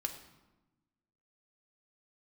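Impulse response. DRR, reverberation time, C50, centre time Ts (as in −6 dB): 3.0 dB, 1.1 s, 9.5 dB, 16 ms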